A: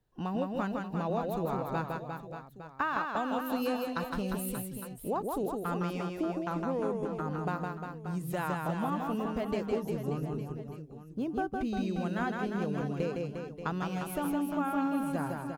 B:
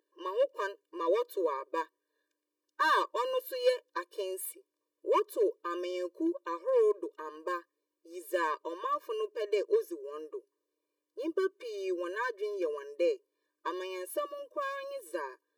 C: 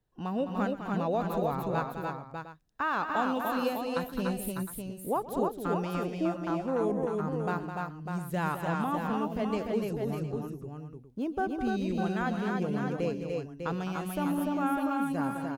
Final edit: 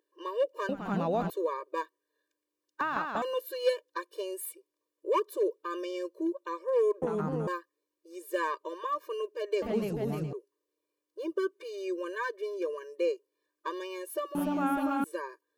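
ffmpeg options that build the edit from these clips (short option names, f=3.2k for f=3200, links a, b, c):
-filter_complex "[2:a]asplit=4[a][b][c][d];[1:a]asplit=6[e][f][g][h][i][j];[e]atrim=end=0.692[k];[a]atrim=start=0.688:end=1.302[l];[f]atrim=start=1.298:end=2.812[m];[0:a]atrim=start=2.808:end=3.222[n];[g]atrim=start=3.218:end=7.022[o];[b]atrim=start=7.018:end=7.472[p];[h]atrim=start=7.468:end=9.622[q];[c]atrim=start=9.618:end=10.332[r];[i]atrim=start=10.328:end=14.352[s];[d]atrim=start=14.348:end=15.042[t];[j]atrim=start=15.038[u];[k][l]acrossfade=d=0.004:c1=hsin:c2=hsin[v];[v][m]acrossfade=d=0.004:c1=hsin:c2=hsin[w];[w][n]acrossfade=d=0.004:c1=hsin:c2=hsin[x];[x][o]acrossfade=d=0.004:c1=hsin:c2=hsin[y];[y][p]acrossfade=d=0.004:c1=hsin:c2=hsin[z];[z][q]acrossfade=d=0.004:c1=hsin:c2=hsin[aa];[aa][r]acrossfade=d=0.004:c1=hsin:c2=hsin[ab];[ab][s]acrossfade=d=0.004:c1=hsin:c2=hsin[ac];[ac][t]acrossfade=d=0.004:c1=hsin:c2=hsin[ad];[ad][u]acrossfade=d=0.004:c1=hsin:c2=hsin"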